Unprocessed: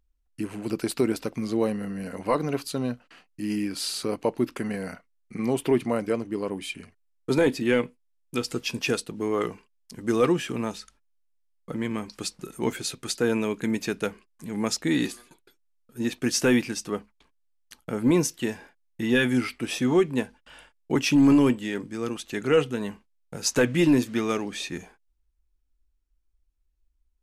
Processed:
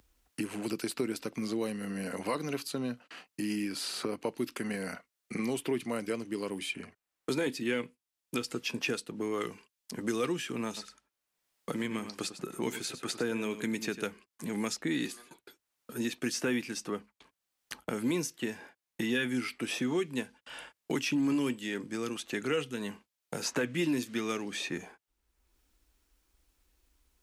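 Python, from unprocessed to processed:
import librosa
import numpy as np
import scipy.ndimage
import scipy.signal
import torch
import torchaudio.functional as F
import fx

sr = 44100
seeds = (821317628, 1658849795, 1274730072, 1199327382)

y = fx.echo_single(x, sr, ms=97, db=-13.0, at=(10.76, 14.03), fade=0.02)
y = fx.highpass(y, sr, hz=240.0, slope=6)
y = fx.dynamic_eq(y, sr, hz=710.0, q=0.91, threshold_db=-39.0, ratio=4.0, max_db=-6)
y = fx.band_squash(y, sr, depth_pct=70)
y = F.gain(torch.from_numpy(y), -4.0).numpy()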